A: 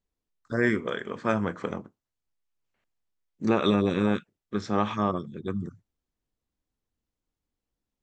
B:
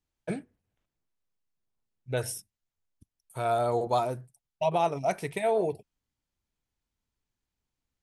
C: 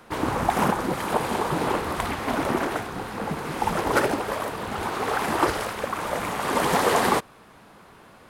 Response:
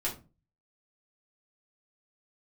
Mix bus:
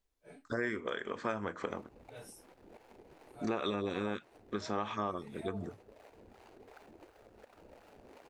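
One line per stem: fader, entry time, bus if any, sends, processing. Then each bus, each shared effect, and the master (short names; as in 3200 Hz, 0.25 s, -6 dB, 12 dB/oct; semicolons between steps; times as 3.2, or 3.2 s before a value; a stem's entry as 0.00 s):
+2.5 dB, 0.00 s, no send, dry
-19.0 dB, 0.00 s, no send, phase scrambler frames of 0.1 s; comb 7 ms, depth 63%
-12.0 dB, 1.60 s, no send, median filter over 41 samples; compressor 10:1, threshold -36 dBFS, peak gain reduction 17 dB; harmonic tremolo 2.8 Hz, depth 70%, crossover 530 Hz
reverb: off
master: bell 150 Hz -10.5 dB 1.4 oct; compressor 3:1, threshold -35 dBFS, peak gain reduction 13 dB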